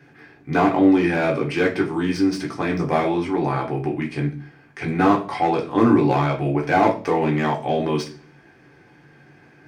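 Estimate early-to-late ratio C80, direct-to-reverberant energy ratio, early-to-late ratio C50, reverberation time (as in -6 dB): 18.0 dB, -1.0 dB, 12.0 dB, 0.40 s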